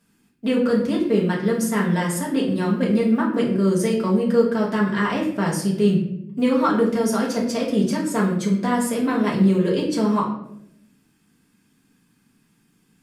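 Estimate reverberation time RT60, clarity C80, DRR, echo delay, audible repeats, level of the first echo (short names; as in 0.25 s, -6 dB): 0.75 s, 9.0 dB, -3.0 dB, none, none, none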